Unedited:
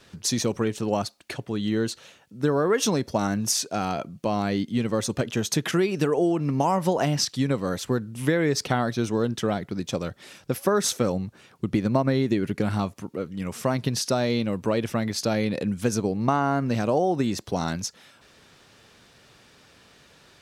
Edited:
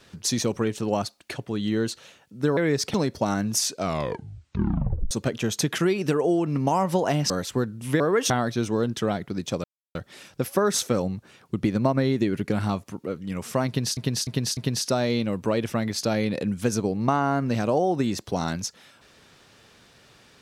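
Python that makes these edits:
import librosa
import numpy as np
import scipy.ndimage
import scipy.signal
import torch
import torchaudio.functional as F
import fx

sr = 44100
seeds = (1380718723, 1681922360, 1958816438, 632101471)

y = fx.edit(x, sr, fx.swap(start_s=2.57, length_s=0.3, other_s=8.34, other_length_s=0.37),
    fx.tape_stop(start_s=3.67, length_s=1.37),
    fx.cut(start_s=7.23, length_s=0.41),
    fx.insert_silence(at_s=10.05, length_s=0.31),
    fx.repeat(start_s=13.77, length_s=0.3, count=4), tone=tone)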